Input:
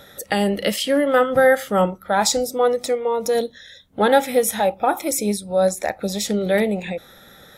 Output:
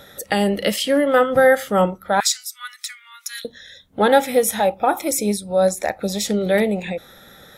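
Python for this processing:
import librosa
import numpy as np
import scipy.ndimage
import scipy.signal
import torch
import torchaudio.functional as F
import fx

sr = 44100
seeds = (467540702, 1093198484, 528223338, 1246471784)

y = fx.steep_highpass(x, sr, hz=1400.0, slope=48, at=(2.2, 3.45))
y = y * librosa.db_to_amplitude(1.0)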